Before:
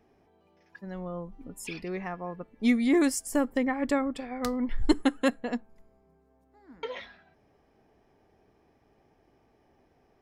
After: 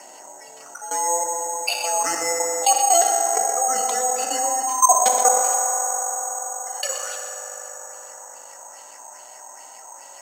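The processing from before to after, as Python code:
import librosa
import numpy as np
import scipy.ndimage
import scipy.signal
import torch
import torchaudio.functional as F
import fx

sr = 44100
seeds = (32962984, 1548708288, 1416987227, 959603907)

y = fx.band_invert(x, sr, width_hz=1000)
y = fx.dynamic_eq(y, sr, hz=500.0, q=0.7, threshold_db=-34.0, ratio=4.0, max_db=4)
y = fx.level_steps(y, sr, step_db=19)
y = fx.filter_lfo_lowpass(y, sr, shape='sine', hz=2.4, low_hz=910.0, high_hz=4500.0, q=3.1)
y = y + 10.0 ** (-14.5 / 20.0) * np.pad(y, (int(124 * sr / 1000.0), 0))[:len(y)]
y = fx.rev_fdn(y, sr, rt60_s=3.2, lf_ratio=1.0, hf_ratio=0.4, size_ms=11.0, drr_db=2.5)
y = (np.kron(scipy.signal.resample_poly(y, 1, 6), np.eye(6)[0]) * 6)[:len(y)]
y = fx.bandpass_edges(y, sr, low_hz=fx.steps((0.0, 380.0), (5.42, 770.0)), high_hz=6000.0)
y = fx.env_flatten(y, sr, amount_pct=50)
y = y * librosa.db_to_amplitude(-2.5)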